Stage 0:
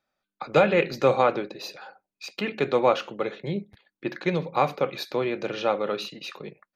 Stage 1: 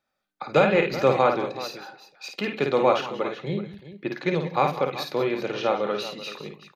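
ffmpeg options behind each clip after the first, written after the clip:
-af "aecho=1:1:53|186|187|381:0.531|0.112|0.158|0.2"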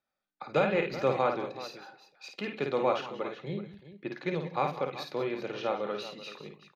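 -af "highshelf=f=11k:g=-11,volume=-7.5dB"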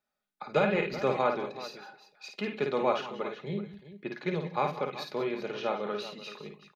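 -af "aecho=1:1:4.8:0.41"

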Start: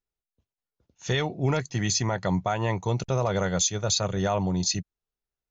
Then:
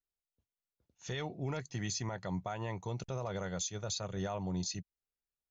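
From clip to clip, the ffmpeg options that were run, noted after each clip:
-af "alimiter=limit=-18dB:level=0:latency=1:release=177,volume=-9dB"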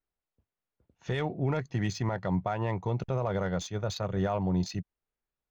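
-af "adynamicsmooth=sensitivity=3:basefreq=2.3k,volume=8.5dB"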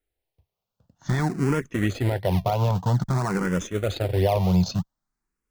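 -filter_complex "[0:a]asplit=2[a][b];[b]acrusher=samples=35:mix=1:aa=0.000001:lfo=1:lforange=35:lforate=3,volume=-6dB[c];[a][c]amix=inputs=2:normalize=0,asplit=2[d][e];[e]afreqshift=0.51[f];[d][f]amix=inputs=2:normalize=1,volume=7.5dB"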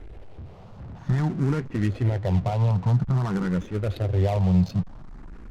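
-af "aeval=exprs='val(0)+0.5*0.0266*sgn(val(0))':c=same,adynamicsmooth=sensitivity=2.5:basefreq=1.1k,bass=f=250:g=7,treble=f=4k:g=5,volume=-6dB"

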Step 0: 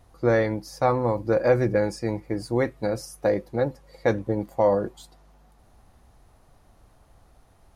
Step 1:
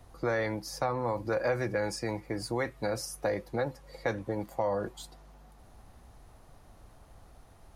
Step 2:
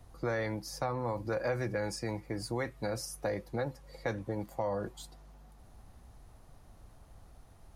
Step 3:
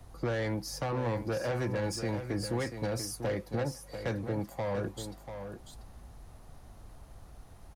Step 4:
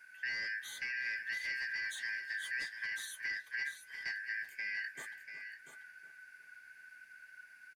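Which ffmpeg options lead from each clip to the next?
-filter_complex "[0:a]acrossover=split=130|680[a][b][c];[a]acompressor=threshold=-44dB:ratio=4[d];[b]acompressor=threshold=-35dB:ratio=4[e];[c]acompressor=threshold=-29dB:ratio=4[f];[d][e][f]amix=inputs=3:normalize=0,asplit=2[g][h];[h]alimiter=level_in=1.5dB:limit=-24dB:level=0:latency=1:release=34,volume=-1.5dB,volume=0dB[i];[g][i]amix=inputs=2:normalize=0,volume=-4.5dB"
-af "bass=f=250:g=4,treble=f=4k:g=2,volume=-4dB"
-filter_complex "[0:a]acrossover=split=280[a][b];[b]asoftclip=type=tanh:threshold=-34.5dB[c];[a][c]amix=inputs=2:normalize=0,aecho=1:1:690:0.355,volume=4dB"
-filter_complex "[0:a]afftfilt=real='real(if(lt(b,272),68*(eq(floor(b/68),0)*2+eq(floor(b/68),1)*0+eq(floor(b/68),2)*3+eq(floor(b/68),3)*1)+mod(b,68),b),0)':imag='imag(if(lt(b,272),68*(eq(floor(b/68),0)*2+eq(floor(b/68),1)*0+eq(floor(b/68),2)*3+eq(floor(b/68),3)*1)+mod(b,68),b),0)':win_size=2048:overlap=0.75,asplit=2[a][b];[b]adelay=365,lowpass=f=1.7k:p=1,volume=-12dB,asplit=2[c][d];[d]adelay=365,lowpass=f=1.7k:p=1,volume=0.5,asplit=2[e][f];[f]adelay=365,lowpass=f=1.7k:p=1,volume=0.5,asplit=2[g][h];[h]adelay=365,lowpass=f=1.7k:p=1,volume=0.5,asplit=2[i][j];[j]adelay=365,lowpass=f=1.7k:p=1,volume=0.5[k];[a][c][e][g][i][k]amix=inputs=6:normalize=0,volume=-7dB"

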